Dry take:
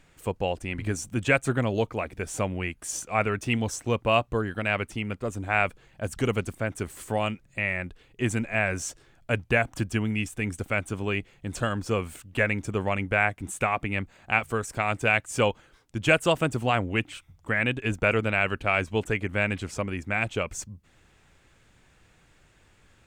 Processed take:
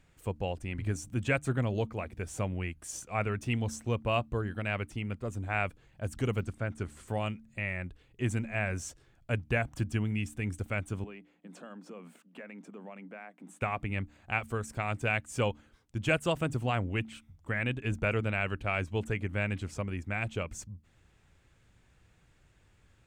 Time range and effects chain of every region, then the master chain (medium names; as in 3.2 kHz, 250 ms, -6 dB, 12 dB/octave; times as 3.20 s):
6.38–7.08 s: low-pass 8.6 kHz + de-esser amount 100% + peaking EQ 1.4 kHz +4.5 dB 0.21 oct
11.04–13.62 s: treble shelf 3.8 kHz -10 dB + compression, threshold -32 dBFS + rippled Chebyshev high-pass 170 Hz, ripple 3 dB
whole clip: peaking EQ 71 Hz +7.5 dB 2.9 oct; de-hum 73.96 Hz, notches 4; trim -8 dB